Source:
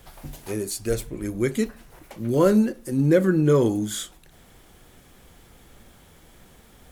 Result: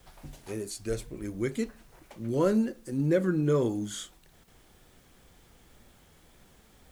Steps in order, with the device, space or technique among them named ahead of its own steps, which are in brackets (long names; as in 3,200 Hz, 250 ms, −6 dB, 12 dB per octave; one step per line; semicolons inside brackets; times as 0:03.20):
worn cassette (low-pass filter 9,600 Hz 12 dB per octave; tape wow and flutter; tape dropouts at 0:04.44, 35 ms −9 dB; white noise bed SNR 36 dB)
level −7 dB